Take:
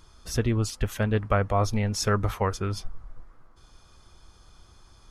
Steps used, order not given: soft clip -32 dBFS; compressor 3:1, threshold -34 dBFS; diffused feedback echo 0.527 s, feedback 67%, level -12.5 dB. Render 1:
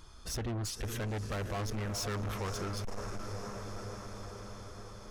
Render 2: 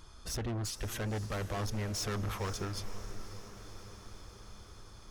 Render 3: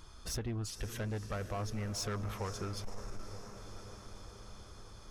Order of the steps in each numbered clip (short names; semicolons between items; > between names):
diffused feedback echo > soft clip > compressor; soft clip > compressor > diffused feedback echo; compressor > diffused feedback echo > soft clip